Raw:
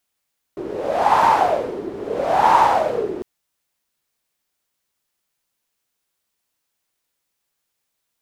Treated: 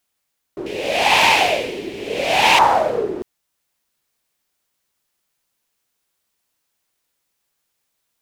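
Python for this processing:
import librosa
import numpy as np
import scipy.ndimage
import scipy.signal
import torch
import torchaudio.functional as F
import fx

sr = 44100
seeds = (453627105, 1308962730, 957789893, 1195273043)

y = fx.high_shelf_res(x, sr, hz=1800.0, db=11.5, q=3.0, at=(0.66, 2.59))
y = fx.rider(y, sr, range_db=4, speed_s=2.0)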